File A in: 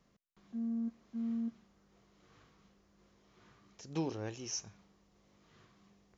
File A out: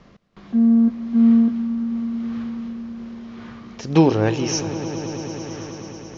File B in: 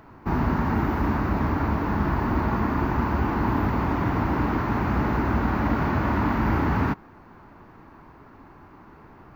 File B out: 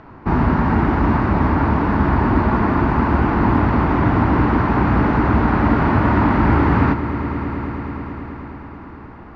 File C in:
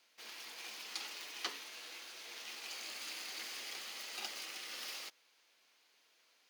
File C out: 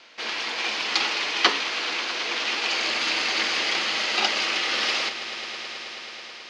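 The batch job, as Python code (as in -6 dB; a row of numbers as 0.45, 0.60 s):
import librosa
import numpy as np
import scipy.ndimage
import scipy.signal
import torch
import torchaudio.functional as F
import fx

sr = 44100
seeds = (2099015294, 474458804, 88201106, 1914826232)

y = scipy.signal.sosfilt(scipy.signal.bessel(4, 3800.0, 'lowpass', norm='mag', fs=sr, output='sos'), x)
y = fx.echo_swell(y, sr, ms=108, loudest=5, wet_db=-17.0)
y = librosa.util.normalize(y) * 10.0 ** (-3 / 20.0)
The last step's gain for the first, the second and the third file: +22.0, +7.0, +23.0 dB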